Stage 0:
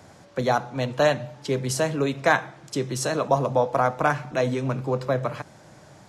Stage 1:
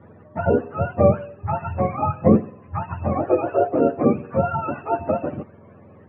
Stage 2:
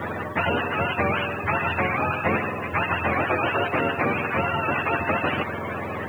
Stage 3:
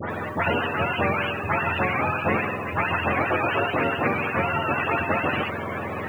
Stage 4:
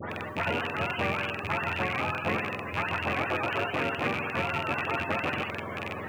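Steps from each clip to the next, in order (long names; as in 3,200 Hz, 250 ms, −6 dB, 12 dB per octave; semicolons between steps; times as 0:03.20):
frequency axis turned over on the octave scale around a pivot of 590 Hz; inverse Chebyshev low-pass filter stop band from 8,200 Hz, stop band 80 dB; level +5 dB
tilt shelving filter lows −8.5 dB, about 1,400 Hz; every bin compressed towards the loudest bin 4 to 1
all-pass dispersion highs, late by 103 ms, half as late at 2,500 Hz
loose part that buzzes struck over −31 dBFS, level −15 dBFS; level −6.5 dB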